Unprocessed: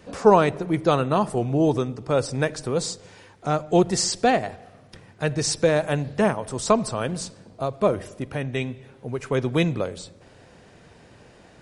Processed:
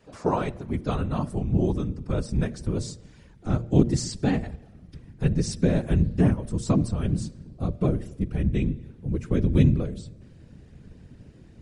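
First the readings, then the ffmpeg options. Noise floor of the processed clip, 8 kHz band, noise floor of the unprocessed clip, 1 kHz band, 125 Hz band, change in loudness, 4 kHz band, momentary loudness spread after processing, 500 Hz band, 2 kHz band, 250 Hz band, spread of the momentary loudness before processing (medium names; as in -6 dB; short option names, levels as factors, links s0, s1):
-51 dBFS, -9.5 dB, -52 dBFS, -11.5 dB, +4.0 dB, -2.5 dB, -9.5 dB, 12 LU, -9.0 dB, -10.5 dB, +0.5 dB, 13 LU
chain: -af "afftfilt=real='hypot(re,im)*cos(2*PI*random(0))':imag='hypot(re,im)*sin(2*PI*random(1))':win_size=512:overlap=0.75,asubboost=boost=9:cutoff=250,bandreject=f=116.5:t=h:w=4,bandreject=f=233:t=h:w=4,bandreject=f=349.5:t=h:w=4,bandreject=f=466:t=h:w=4,bandreject=f=582.5:t=h:w=4,volume=0.668"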